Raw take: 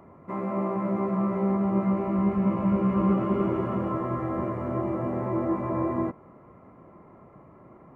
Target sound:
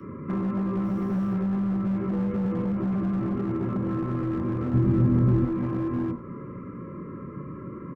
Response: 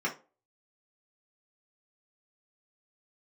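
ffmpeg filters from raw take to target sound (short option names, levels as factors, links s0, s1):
-filter_complex "[0:a]alimiter=limit=0.0631:level=0:latency=1:release=86,asuperstop=centerf=750:order=12:qfactor=2,asettb=1/sr,asplit=3[s0][s1][s2];[s0]atrim=end=0.844[s3];[s1]atrim=start=0.84:end=1.34,asetpts=PTS-STARTPTS,afade=t=in:d=0.004:c=qsin,afade=t=out:st=0.496:d=0.004:c=qsin,acrusher=bits=4:mode=log:mix=0:aa=0.000001[s4];[s2]atrim=start=1.336[s5];[s3][s4]acrossfade=d=0.004:c1=hsin:c2=qsin[s6];[s6][s5]acrossfade=d=0.004:c1=qsin:c2=hsin,asoftclip=type=tanh:threshold=0.0355,equalizer=f=100:t=o:w=1.7:g=13.5[s7];[1:a]atrim=start_sample=2205[s8];[s7][s8]afir=irnorm=-1:irlink=0,asettb=1/sr,asplit=3[s9][s10][s11];[s9]atrim=end=2.134[s12];[s10]atrim=start=2.13:end=2.72,asetpts=PTS-STARTPTS,afade=t=in:d=0.004:c=qsin,afade=t=out:st=0.586:d=0.004:c=qsin,aeval=exprs='val(0)+0.0447*sin(2*PI*490*n/s)':c=same[s13];[s11]atrim=start=2.716[s14];[s12][s13]acrossfade=d=0.004:c1=hsin:c2=qsin[s15];[s15][s14]acrossfade=d=0.004:c1=qsin:c2=hsin,acrossover=split=150|1000[s16][s17][s18];[s16]acompressor=threshold=0.0224:ratio=4[s19];[s17]acompressor=threshold=0.0316:ratio=4[s20];[s18]acompressor=threshold=0.00355:ratio=4[s21];[s19][s20][s21]amix=inputs=3:normalize=0,volume=16.8,asoftclip=hard,volume=0.0596,asettb=1/sr,asplit=3[s22][s23][s24];[s22]atrim=end=4.744[s25];[s23]atrim=start=4.74:end=5.45,asetpts=PTS-STARTPTS,afade=t=in:d=0.004:c=qsin,afade=t=out:st=0.706:d=0.004:c=qsin,bass=f=250:g=11,treble=f=4000:g=2[s26];[s24]atrim=start=5.446[s27];[s25][s26]acrossfade=d=0.004:c1=hsin:c2=qsin[s28];[s28][s27]acrossfade=d=0.004:c1=qsin:c2=hsin,asplit=4[s29][s30][s31][s32];[s30]adelay=92,afreqshift=-85,volume=0.112[s33];[s31]adelay=184,afreqshift=-170,volume=0.0372[s34];[s32]adelay=276,afreqshift=-255,volume=0.0122[s35];[s29][s33][s34][s35]amix=inputs=4:normalize=0,volume=1.26"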